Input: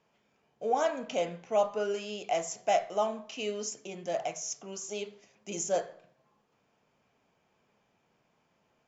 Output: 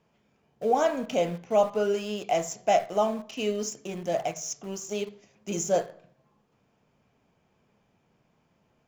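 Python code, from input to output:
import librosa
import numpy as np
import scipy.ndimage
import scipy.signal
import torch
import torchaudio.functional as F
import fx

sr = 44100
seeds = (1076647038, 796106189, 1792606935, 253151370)

p1 = fx.low_shelf(x, sr, hz=280.0, db=10.5)
p2 = np.where(np.abs(p1) >= 10.0 ** (-36.0 / 20.0), p1, 0.0)
y = p1 + (p2 * librosa.db_to_amplitude(-9.0))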